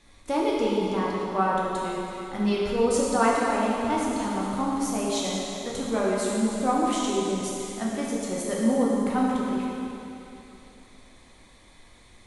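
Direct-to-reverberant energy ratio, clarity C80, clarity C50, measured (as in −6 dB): −5.0 dB, −0.5 dB, −2.0 dB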